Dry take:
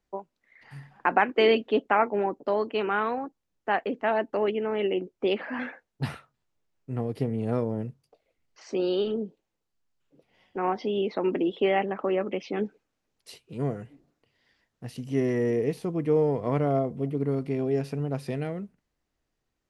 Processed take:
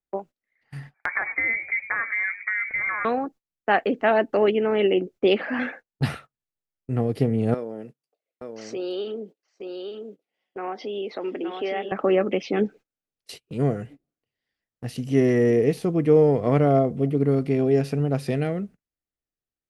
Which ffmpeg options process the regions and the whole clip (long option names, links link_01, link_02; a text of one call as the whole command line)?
ffmpeg -i in.wav -filter_complex "[0:a]asettb=1/sr,asplit=3[link_01][link_02][link_03];[link_01]atrim=end=0.944[link_04];[link_02]atrim=start=0.94:end=3.05,asetpts=PTS-STARTPTS,afade=type=in:duration=0.004:curve=qsin,afade=type=out:start_time=2.106:duration=0.004:curve=qsin,acompressor=threshold=-29dB:ratio=4:attack=3.2:release=140:knee=1:detection=peak,asplit=4[link_05][link_06][link_07][link_08];[link_06]adelay=101,afreqshift=-110,volume=-15dB[link_09];[link_07]adelay=202,afreqshift=-220,volume=-24.4dB[link_10];[link_08]adelay=303,afreqshift=-330,volume=-33.7dB[link_11];[link_05][link_09][link_10][link_11]amix=inputs=4:normalize=0,atrim=end_sample=93051,lowpass=frequency=2100:width_type=q:width=0.5098,lowpass=frequency=2100:width_type=q:width=0.6013,lowpass=frequency=2100:width_type=q:width=0.9,lowpass=frequency=2100:width_type=q:width=2.563,afreqshift=-2500[link_12];[link_03]atrim=start=3.046[link_13];[link_04][link_12]acrossfade=duration=0.004:curve1=hsin:curve2=qsin[link_14];[link_14][link_13]acrossfade=duration=0.004:curve1=qsin:curve2=hsin,asettb=1/sr,asplit=3[link_15][link_16][link_17];[link_15]atrim=end=7.544[link_18];[link_16]atrim=start=7.54:end=11.92,asetpts=PTS-STARTPTS,afade=type=in:duration=0.004:curve=qsin,afade=type=out:start_time=4.376:duration=0.004:curve=qsin,highpass=300,acompressor=threshold=-48dB:ratio=1.5:attack=3.2:release=140:knee=1:detection=peak,aecho=1:1:869:0.562,atrim=end_sample=193158[link_19];[link_17]atrim=start=11.916[link_20];[link_18][link_19]acrossfade=duration=0.004:curve1=hsin:curve2=qsin[link_21];[link_21][link_20]acrossfade=duration=0.004:curve1=qsin:curve2=hsin,equalizer=frequency=970:width_type=o:width=0.21:gain=-8.5,agate=range=-22dB:threshold=-48dB:ratio=16:detection=peak,volume=6.5dB" out.wav